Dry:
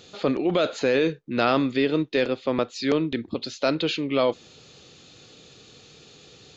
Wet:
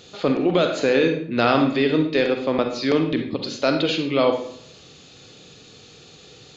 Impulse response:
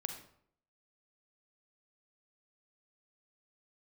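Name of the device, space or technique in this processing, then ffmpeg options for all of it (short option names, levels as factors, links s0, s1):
bathroom: -filter_complex "[0:a]asettb=1/sr,asplit=3[s0][s1][s2];[s0]atrim=end=2.604[s3];[s1]atrim=start=2.6:end=3.27,asetpts=PTS-STARTPTS,afade=t=in:d=0.004:c=qsin,afade=t=out:st=0.666:d=0.004:c=qsin,lowpass=f=6200:w=0.5412,lowpass=f=6200:w=1.3066[s4];[s2]atrim=start=3.266[s5];[s3][s4]acrossfade=d=0.004:c1=hsin:c2=qsin[s6];[s6][s5]acrossfade=d=0.004:c1=qsin:c2=hsin[s7];[1:a]atrim=start_sample=2205[s8];[s7][s8]afir=irnorm=-1:irlink=0,volume=1.58"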